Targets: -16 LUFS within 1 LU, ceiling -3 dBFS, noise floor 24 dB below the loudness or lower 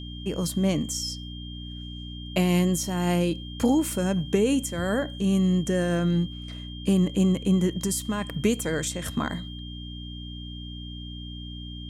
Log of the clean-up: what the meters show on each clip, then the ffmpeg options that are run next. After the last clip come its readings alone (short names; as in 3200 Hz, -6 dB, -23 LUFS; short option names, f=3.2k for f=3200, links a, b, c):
hum 60 Hz; harmonics up to 300 Hz; hum level -36 dBFS; steady tone 3200 Hz; tone level -42 dBFS; loudness -25.5 LUFS; peak -10.5 dBFS; loudness target -16.0 LUFS
-> -af "bandreject=f=60:t=h:w=4,bandreject=f=120:t=h:w=4,bandreject=f=180:t=h:w=4,bandreject=f=240:t=h:w=4,bandreject=f=300:t=h:w=4"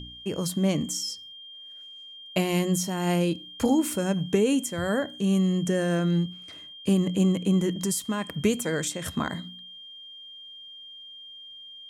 hum none; steady tone 3200 Hz; tone level -42 dBFS
-> -af "bandreject=f=3.2k:w=30"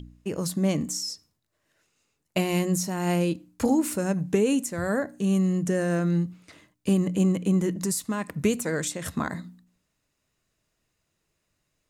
steady tone none; loudness -26.5 LUFS; peak -10.5 dBFS; loudness target -16.0 LUFS
-> -af "volume=10.5dB,alimiter=limit=-3dB:level=0:latency=1"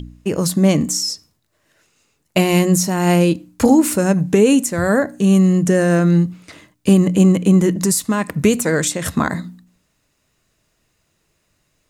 loudness -16.0 LUFS; peak -3.0 dBFS; noise floor -67 dBFS